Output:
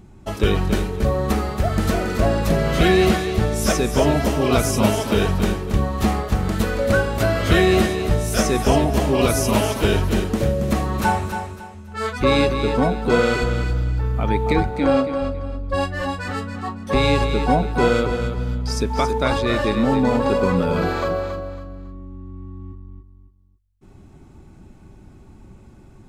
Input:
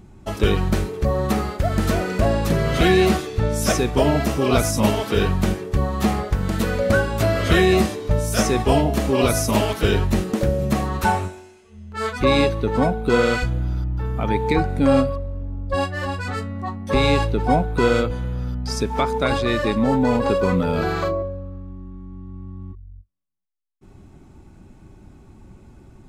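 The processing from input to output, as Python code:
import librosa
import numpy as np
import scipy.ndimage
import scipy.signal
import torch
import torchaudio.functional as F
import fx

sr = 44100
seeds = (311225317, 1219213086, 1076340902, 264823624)

y = fx.bandpass_edges(x, sr, low_hz=fx.line((14.69, 310.0), (15.2, 190.0)), high_hz=6200.0, at=(14.69, 15.2), fade=0.02)
y = fx.echo_feedback(y, sr, ms=277, feedback_pct=29, wet_db=-8.0)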